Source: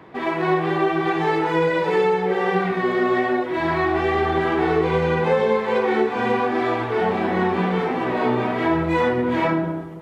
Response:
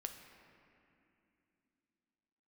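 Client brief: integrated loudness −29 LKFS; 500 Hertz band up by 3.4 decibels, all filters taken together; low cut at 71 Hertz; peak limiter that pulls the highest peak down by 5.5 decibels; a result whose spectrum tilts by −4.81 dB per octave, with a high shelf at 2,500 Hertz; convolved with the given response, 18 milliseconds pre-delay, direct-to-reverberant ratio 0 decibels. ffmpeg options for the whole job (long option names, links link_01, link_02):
-filter_complex "[0:a]highpass=71,equalizer=frequency=500:width_type=o:gain=4,highshelf=frequency=2500:gain=5.5,alimiter=limit=-10.5dB:level=0:latency=1,asplit=2[link_01][link_02];[1:a]atrim=start_sample=2205,adelay=18[link_03];[link_02][link_03]afir=irnorm=-1:irlink=0,volume=2.5dB[link_04];[link_01][link_04]amix=inputs=2:normalize=0,volume=-13dB"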